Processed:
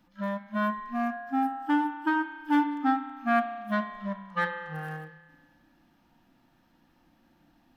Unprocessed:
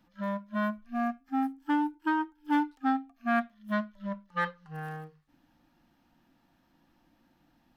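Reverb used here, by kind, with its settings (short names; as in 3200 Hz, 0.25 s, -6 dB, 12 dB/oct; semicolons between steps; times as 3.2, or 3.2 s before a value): spring tank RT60 1.6 s, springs 31 ms, chirp 20 ms, DRR 6 dB; gain +2 dB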